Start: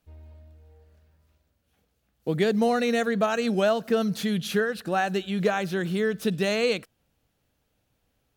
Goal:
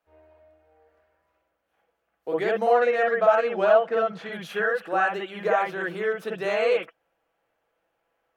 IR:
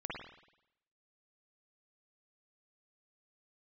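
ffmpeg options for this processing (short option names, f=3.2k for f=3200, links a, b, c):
-filter_complex "[0:a]acrossover=split=440 2000:gain=0.0631 1 0.2[a][b][c];[a][b][c]amix=inputs=3:normalize=0,asettb=1/sr,asplit=3[d][e][f];[d]atrim=end=2.734[g];[e]atrim=start=2.73:end=4.33,asetpts=PTS-STARTPTS,afade=t=in:d=0.004:c=qsin,afade=t=out:st=1.596:d=0.004:c=qsin,adynamicsmooth=sensitivity=4.5:basefreq=4.6k[h];[f]atrim=start=4.326[i];[g][h]acrossfade=d=0.004:c1=hsin:c2=qsin[j];[j][i]acrossfade=d=0.004:c1=qsin:c2=hsin[k];[1:a]atrim=start_sample=2205,atrim=end_sample=3528[l];[k][l]afir=irnorm=-1:irlink=0,volume=7dB"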